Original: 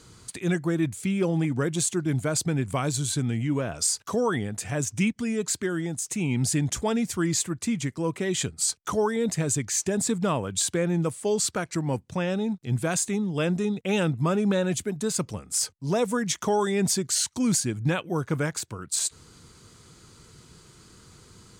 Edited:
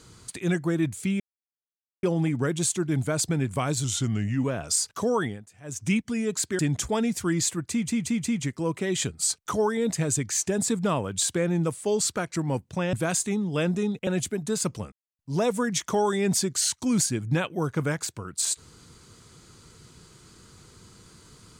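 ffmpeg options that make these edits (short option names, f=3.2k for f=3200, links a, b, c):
-filter_complex "[0:a]asplit=14[a][b][c][d][e][f][g][h][i][j][k][l][m][n];[a]atrim=end=1.2,asetpts=PTS-STARTPTS,afade=t=out:st=1.196:d=0.004:c=hsin,apad=pad_dur=0.83[o];[b]atrim=start=1.2:end=3.014,asetpts=PTS-STARTPTS,afade=t=in:d=0.004:c=hsin[p];[c]atrim=start=3.01:end=3.55,asetpts=PTS-STARTPTS,asetrate=39690,aresample=44100[q];[d]atrim=start=3.546:end=4.57,asetpts=PTS-STARTPTS,afade=t=out:st=0.764:d=0.26:silence=0.0944061[r];[e]atrim=start=4.57:end=4.73,asetpts=PTS-STARTPTS,volume=-20.5dB[s];[f]atrim=start=4.73:end=5.702,asetpts=PTS-STARTPTS,afade=t=in:d=0.26:silence=0.0944061[t];[g]atrim=start=6.518:end=7.812[u];[h]atrim=start=7.628:end=7.812[v];[i]atrim=start=7.628:end=7.812[w];[j]atrim=start=7.628:end=12.322[x];[k]atrim=start=12.748:end=13.892[y];[l]atrim=start=14.608:end=15.46,asetpts=PTS-STARTPTS,afade=t=out:st=0.848:d=0.004:c=hsin[z];[m]atrim=start=15.46:end=15.73,asetpts=PTS-STARTPTS,volume=0[aa];[n]atrim=start=15.73,asetpts=PTS-STARTPTS,afade=t=in:d=0.004:c=hsin[ab];[o][p]concat=n=2:v=0:a=1[ac];[ac][q]acrossfade=d=0.004:c1=hsin:c2=hsin[ad];[r][s][t]concat=n=3:v=0:a=1[ae];[ad][ae]acrossfade=d=0.004:c1=hsin:c2=hsin[af];[af][u]acrossfade=d=0.004:c1=hsin:c2=hsin[ag];[ag][v]acrossfade=d=0.004:c1=hsin:c2=hsin[ah];[ah][w]acrossfade=d=0.004:c1=hsin:c2=hsin[ai];[ai][x]acrossfade=d=0.004:c1=hsin:c2=hsin[aj];[aj][y]acrossfade=d=0.004:c1=hsin:c2=hsin[ak];[z][aa][ab]concat=n=3:v=0:a=1[al];[ak][al]acrossfade=d=0.004:c1=hsin:c2=hsin"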